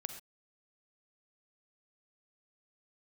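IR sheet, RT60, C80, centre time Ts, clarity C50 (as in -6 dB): not exponential, 10.0 dB, 15 ms, 7.5 dB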